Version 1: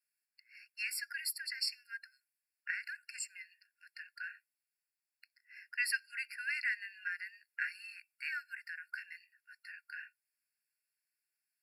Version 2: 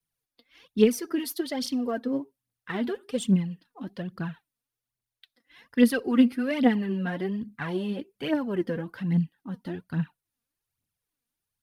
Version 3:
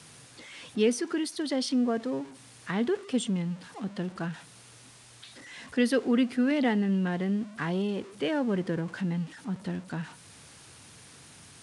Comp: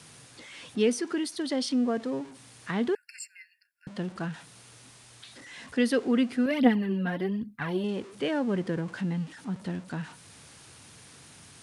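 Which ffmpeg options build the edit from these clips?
ffmpeg -i take0.wav -i take1.wav -i take2.wav -filter_complex "[2:a]asplit=3[link_01][link_02][link_03];[link_01]atrim=end=2.952[link_04];[0:a]atrim=start=2.948:end=3.872[link_05];[link_02]atrim=start=3.868:end=6.462[link_06];[1:a]atrim=start=6.458:end=7.842[link_07];[link_03]atrim=start=7.838[link_08];[link_04][link_05]acrossfade=duration=0.004:curve1=hsin:curve2=hsin[link_09];[link_09][link_06]acrossfade=duration=0.004:curve1=hsin:curve2=hsin[link_10];[link_10][link_07]acrossfade=duration=0.004:curve1=hsin:curve2=hsin[link_11];[link_11][link_08]acrossfade=duration=0.004:curve1=hsin:curve2=hsin" out.wav

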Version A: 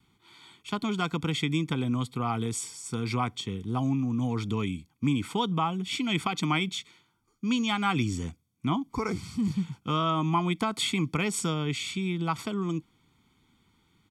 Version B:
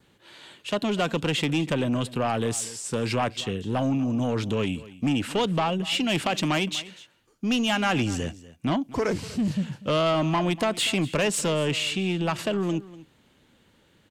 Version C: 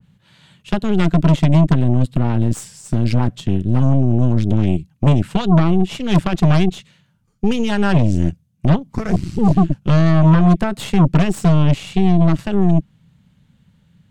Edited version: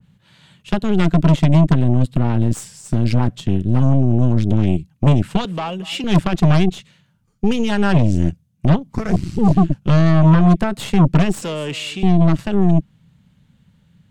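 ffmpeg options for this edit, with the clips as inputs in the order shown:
ffmpeg -i take0.wav -i take1.wav -i take2.wav -filter_complex "[1:a]asplit=2[link_01][link_02];[2:a]asplit=3[link_03][link_04][link_05];[link_03]atrim=end=5.452[link_06];[link_01]atrim=start=5.448:end=6.042[link_07];[link_04]atrim=start=6.038:end=11.422[link_08];[link_02]atrim=start=11.418:end=12.032[link_09];[link_05]atrim=start=12.028[link_10];[link_06][link_07]acrossfade=duration=0.004:curve1=hsin:curve2=hsin[link_11];[link_11][link_08]acrossfade=duration=0.004:curve1=hsin:curve2=hsin[link_12];[link_12][link_09]acrossfade=duration=0.004:curve1=hsin:curve2=hsin[link_13];[link_13][link_10]acrossfade=duration=0.004:curve1=hsin:curve2=hsin" out.wav

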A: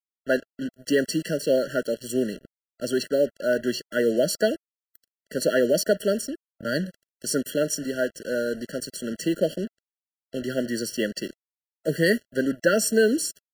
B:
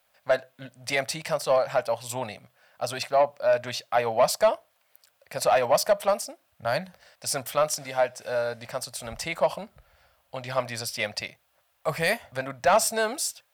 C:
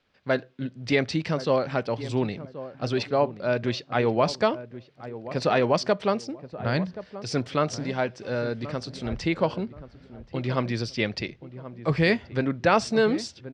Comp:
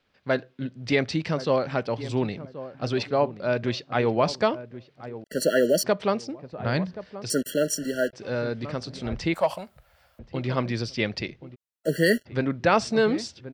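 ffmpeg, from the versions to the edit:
ffmpeg -i take0.wav -i take1.wav -i take2.wav -filter_complex "[0:a]asplit=3[link_01][link_02][link_03];[2:a]asplit=5[link_04][link_05][link_06][link_07][link_08];[link_04]atrim=end=5.242[link_09];[link_01]atrim=start=5.238:end=5.842[link_10];[link_05]atrim=start=5.838:end=7.302[link_11];[link_02]atrim=start=7.298:end=8.132[link_12];[link_06]atrim=start=8.128:end=9.342[link_13];[1:a]atrim=start=9.338:end=10.192[link_14];[link_07]atrim=start=10.188:end=11.56[link_15];[link_03]atrim=start=11.54:end=12.27[link_16];[link_08]atrim=start=12.25[link_17];[link_09][link_10]acrossfade=duration=0.004:curve1=hsin:curve2=hsin[link_18];[link_18][link_11]acrossfade=duration=0.004:curve1=hsin:curve2=hsin[link_19];[link_19][link_12]acrossfade=duration=0.004:curve1=hsin:curve2=hsin[link_20];[link_20][link_13]acrossfade=duration=0.004:curve1=hsin:curve2=hsin[link_21];[link_21][link_14]acrossfade=duration=0.004:curve1=hsin:curve2=hsin[link_22];[link_22][link_15]acrossfade=duration=0.004:curve1=hsin:curve2=hsin[link_23];[link_23][link_16]acrossfade=duration=0.02:curve1=tri:curve2=tri[link_24];[link_24][link_17]acrossfade=duration=0.02:curve1=tri:curve2=tri" out.wav

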